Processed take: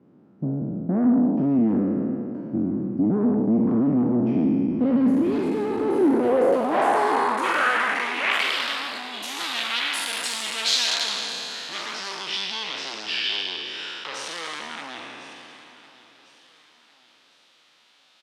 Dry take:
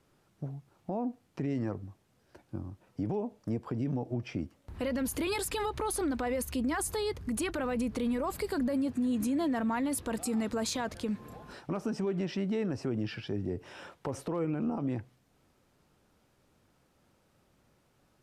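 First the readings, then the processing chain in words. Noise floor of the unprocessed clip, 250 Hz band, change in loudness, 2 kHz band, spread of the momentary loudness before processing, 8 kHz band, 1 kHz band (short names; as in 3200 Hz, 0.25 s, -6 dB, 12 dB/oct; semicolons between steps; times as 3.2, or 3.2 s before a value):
-70 dBFS, +10.0 dB, +10.5 dB, +16.0 dB, 12 LU, +6.0 dB, +13.0 dB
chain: spectral trails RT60 2.59 s; HPF 130 Hz 12 dB/oct; tilt -1.5 dB/oct; sine folder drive 13 dB, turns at -11.5 dBFS; low shelf 460 Hz -8.5 dB; band-pass sweep 230 Hz -> 3600 Hz, 5.69–8.67; on a send: feedback echo 1.052 s, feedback 37%, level -17.5 dB; on the sum: gain +5.5 dB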